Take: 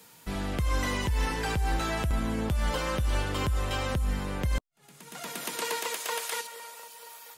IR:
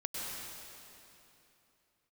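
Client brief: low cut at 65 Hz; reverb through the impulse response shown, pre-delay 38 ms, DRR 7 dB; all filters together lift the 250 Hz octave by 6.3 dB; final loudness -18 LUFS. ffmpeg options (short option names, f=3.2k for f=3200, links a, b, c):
-filter_complex "[0:a]highpass=65,equalizer=f=250:t=o:g=8,asplit=2[a][b];[1:a]atrim=start_sample=2205,adelay=38[c];[b][c]afir=irnorm=-1:irlink=0,volume=-10dB[d];[a][d]amix=inputs=2:normalize=0,volume=11dB"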